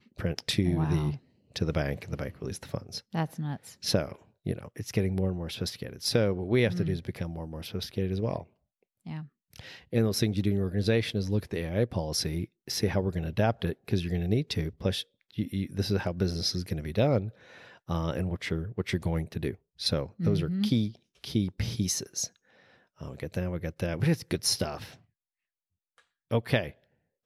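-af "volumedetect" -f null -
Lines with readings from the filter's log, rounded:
mean_volume: -30.6 dB
max_volume: -11.8 dB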